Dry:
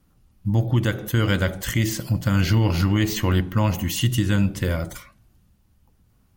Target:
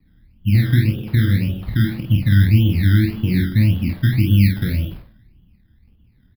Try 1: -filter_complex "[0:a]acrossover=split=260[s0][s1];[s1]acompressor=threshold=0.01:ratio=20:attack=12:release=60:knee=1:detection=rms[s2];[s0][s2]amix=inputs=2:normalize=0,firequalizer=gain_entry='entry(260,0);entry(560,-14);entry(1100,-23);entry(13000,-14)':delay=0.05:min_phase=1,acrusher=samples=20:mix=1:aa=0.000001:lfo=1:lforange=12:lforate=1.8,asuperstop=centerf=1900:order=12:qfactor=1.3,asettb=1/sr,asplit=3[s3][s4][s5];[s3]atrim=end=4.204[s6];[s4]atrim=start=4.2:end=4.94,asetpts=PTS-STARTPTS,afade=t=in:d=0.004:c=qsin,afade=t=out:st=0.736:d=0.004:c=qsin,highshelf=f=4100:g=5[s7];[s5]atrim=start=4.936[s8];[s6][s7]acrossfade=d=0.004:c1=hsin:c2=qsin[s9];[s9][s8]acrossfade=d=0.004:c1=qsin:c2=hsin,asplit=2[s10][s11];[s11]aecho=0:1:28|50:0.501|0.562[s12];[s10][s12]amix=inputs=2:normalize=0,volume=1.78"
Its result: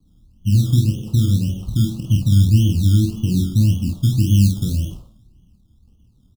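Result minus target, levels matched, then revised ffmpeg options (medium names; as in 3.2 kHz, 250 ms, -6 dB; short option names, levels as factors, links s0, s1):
2 kHz band -18.5 dB; compression: peak gain reduction +7 dB
-filter_complex "[0:a]acrossover=split=260[s0][s1];[s1]acompressor=threshold=0.0237:ratio=20:attack=12:release=60:knee=1:detection=rms[s2];[s0][s2]amix=inputs=2:normalize=0,firequalizer=gain_entry='entry(260,0);entry(560,-14);entry(1100,-23);entry(13000,-14)':delay=0.05:min_phase=1,acrusher=samples=20:mix=1:aa=0.000001:lfo=1:lforange=12:lforate=1.8,asuperstop=centerf=7500:order=12:qfactor=1.3,asettb=1/sr,asplit=3[s3][s4][s5];[s3]atrim=end=4.204[s6];[s4]atrim=start=4.2:end=4.94,asetpts=PTS-STARTPTS,afade=t=in:d=0.004:c=qsin,afade=t=out:st=0.736:d=0.004:c=qsin,highshelf=f=4100:g=5[s7];[s5]atrim=start=4.936[s8];[s6][s7]acrossfade=d=0.004:c1=hsin:c2=qsin[s9];[s9][s8]acrossfade=d=0.004:c1=qsin:c2=hsin,asplit=2[s10][s11];[s11]aecho=0:1:28|50:0.501|0.562[s12];[s10][s12]amix=inputs=2:normalize=0,volume=1.78"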